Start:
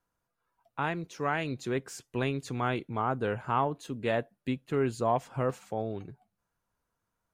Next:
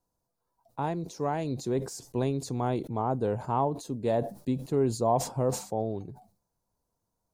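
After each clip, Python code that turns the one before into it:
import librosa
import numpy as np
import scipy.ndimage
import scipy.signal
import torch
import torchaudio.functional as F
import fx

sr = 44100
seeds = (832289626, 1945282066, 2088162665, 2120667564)

y = fx.band_shelf(x, sr, hz=2000.0, db=-14.0, octaves=1.7)
y = fx.sustainer(y, sr, db_per_s=130.0)
y = y * 10.0 ** (2.5 / 20.0)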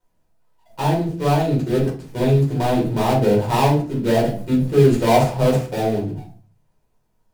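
y = fx.dead_time(x, sr, dead_ms=0.18)
y = fx.room_shoebox(y, sr, seeds[0], volume_m3=250.0, walls='furnished', distance_m=4.7)
y = y * 10.0 ** (1.0 / 20.0)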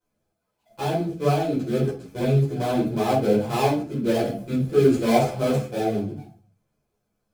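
y = fx.notch_comb(x, sr, f0_hz=940.0)
y = fx.ensemble(y, sr)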